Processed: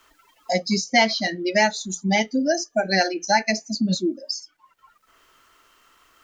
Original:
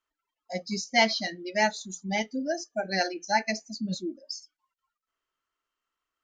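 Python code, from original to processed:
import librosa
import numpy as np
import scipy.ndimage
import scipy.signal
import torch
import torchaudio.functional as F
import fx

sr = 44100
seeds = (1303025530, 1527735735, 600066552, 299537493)

y = fx.band_squash(x, sr, depth_pct=70)
y = F.gain(torch.from_numpy(y), 7.5).numpy()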